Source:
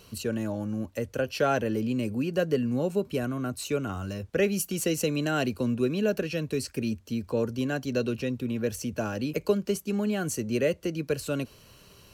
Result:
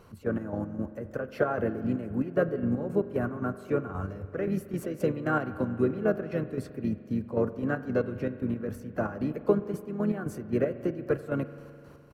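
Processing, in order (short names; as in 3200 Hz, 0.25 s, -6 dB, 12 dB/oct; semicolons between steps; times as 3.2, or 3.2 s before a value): harmoniser -4 st -9 dB, +3 st -16 dB; dynamic EQ 6600 Hz, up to -7 dB, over -51 dBFS, Q 0.96; chopper 3.8 Hz, depth 60%, duty 45%; resonant high shelf 2100 Hz -12 dB, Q 1.5; spring tank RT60 2.6 s, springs 42 ms, chirp 40 ms, DRR 12.5 dB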